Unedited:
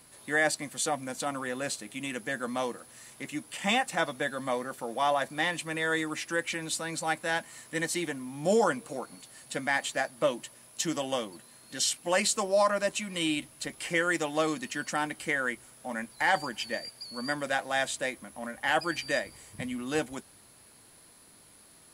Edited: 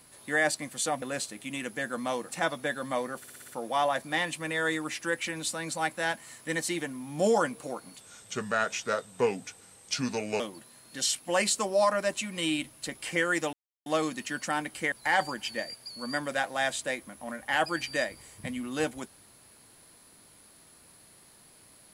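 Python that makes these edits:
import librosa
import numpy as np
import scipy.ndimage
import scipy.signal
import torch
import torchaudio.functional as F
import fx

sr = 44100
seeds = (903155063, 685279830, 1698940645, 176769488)

y = fx.edit(x, sr, fx.cut(start_s=1.02, length_s=0.5),
    fx.cut(start_s=2.79, length_s=1.06),
    fx.stutter(start_s=4.74, slice_s=0.06, count=6),
    fx.speed_span(start_s=9.26, length_s=1.92, speed=0.8),
    fx.insert_silence(at_s=14.31, length_s=0.33),
    fx.cut(start_s=15.37, length_s=0.7), tone=tone)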